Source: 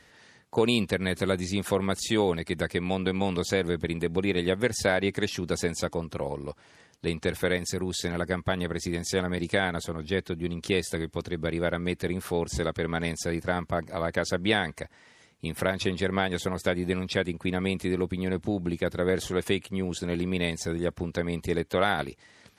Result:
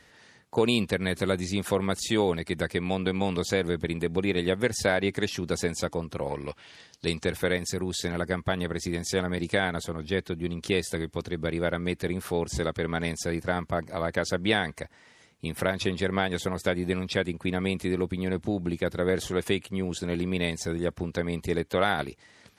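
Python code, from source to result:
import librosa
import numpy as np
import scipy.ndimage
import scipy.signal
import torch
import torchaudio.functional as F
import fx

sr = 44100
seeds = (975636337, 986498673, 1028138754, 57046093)

y = fx.peak_eq(x, sr, hz=fx.line((6.26, 1700.0), (7.22, 6900.0)), db=12.0, octaves=1.3, at=(6.26, 7.22), fade=0.02)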